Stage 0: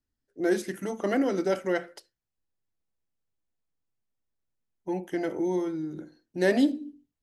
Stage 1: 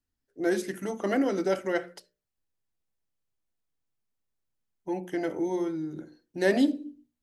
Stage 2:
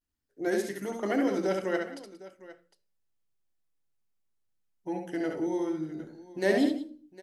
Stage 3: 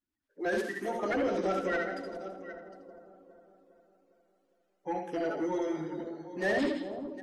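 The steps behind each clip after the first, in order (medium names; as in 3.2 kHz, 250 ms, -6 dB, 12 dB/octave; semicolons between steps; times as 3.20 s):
hum notches 60/120/180/240/300/360/420/480/540/600 Hz
feedback comb 110 Hz, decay 0.48 s, harmonics all, mix 30%; vibrato 0.34 Hz 48 cents; on a send: multi-tap echo 69/181/757 ms -4.5/-15.5/-17.5 dB
coarse spectral quantiser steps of 30 dB; overdrive pedal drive 19 dB, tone 1.7 kHz, clips at -13 dBFS; two-band feedback delay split 1.1 kHz, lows 407 ms, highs 82 ms, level -10 dB; trim -6.5 dB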